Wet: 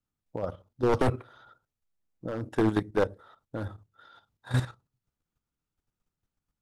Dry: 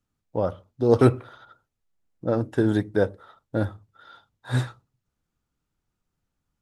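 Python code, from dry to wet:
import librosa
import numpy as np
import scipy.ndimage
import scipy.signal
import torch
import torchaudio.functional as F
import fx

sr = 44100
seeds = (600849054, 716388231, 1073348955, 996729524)

y = np.minimum(x, 2.0 * 10.0 ** (-15.5 / 20.0) - x)
y = fx.level_steps(y, sr, step_db=11)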